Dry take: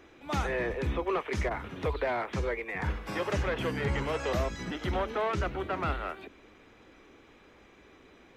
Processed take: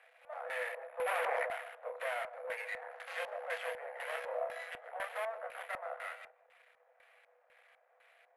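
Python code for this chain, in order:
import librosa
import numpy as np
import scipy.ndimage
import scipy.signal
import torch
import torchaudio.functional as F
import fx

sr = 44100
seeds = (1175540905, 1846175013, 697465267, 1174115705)

p1 = fx.quant_dither(x, sr, seeds[0], bits=6, dither='none', at=(2.91, 3.58))
p2 = fx.chorus_voices(p1, sr, voices=4, hz=0.32, base_ms=29, depth_ms=1.4, mix_pct=35)
p3 = (np.kron(scipy.signal.resample_poly(p2, 1, 4), np.eye(4)[0]) * 4)[:len(p2)]
p4 = np.maximum(p3, 0.0)
p5 = scipy.signal.sosfilt(scipy.signal.cheby1(6, 9, 480.0, 'highpass', fs=sr, output='sos'), p4)
p6 = p5 + fx.echo_single(p5, sr, ms=152, db=-11.5, dry=0)
p7 = fx.filter_lfo_lowpass(p6, sr, shape='square', hz=2.0, low_hz=860.0, high_hz=3100.0, q=0.88)
p8 = fx.env_flatten(p7, sr, amount_pct=100, at=(0.99, 1.45), fade=0.02)
y = p8 * librosa.db_to_amplitude(5.0)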